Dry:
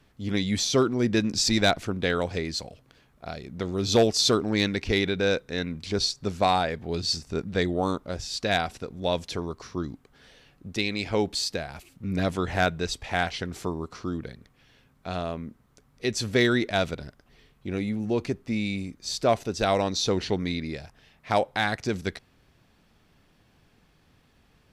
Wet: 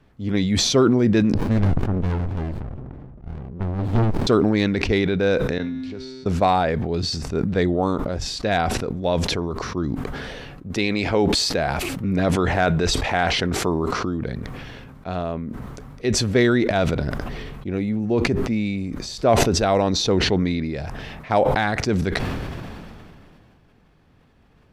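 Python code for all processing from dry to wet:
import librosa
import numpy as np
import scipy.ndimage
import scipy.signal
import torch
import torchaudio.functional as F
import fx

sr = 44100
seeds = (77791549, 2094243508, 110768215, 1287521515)

y = fx.chain(x, sr, fx.env_lowpass(base_hz=610.0, full_db=-21.5),
    fx.air_absorb(metres=160.0),
    fx.running_max(window=65), at=(1.34, 4.27))
y = fx.chain(y, sr, fx.lowpass(hz=3200.0, slope=6),
    fx.comb_fb(f0_hz=130.0, decay_s=1.8, harmonics='all', damping=0.0, mix_pct=90),
    fx.band_squash(depth_pct=40), at=(5.58, 6.26))
y = fx.chain(y, sr, fx.low_shelf(hz=200.0, db=-5.5),
    fx.env_flatten(amount_pct=50), at=(10.7, 14.05))
y = fx.high_shelf(y, sr, hz=2600.0, db=-12.0)
y = fx.sustainer(y, sr, db_per_s=23.0)
y = F.gain(torch.from_numpy(y), 5.0).numpy()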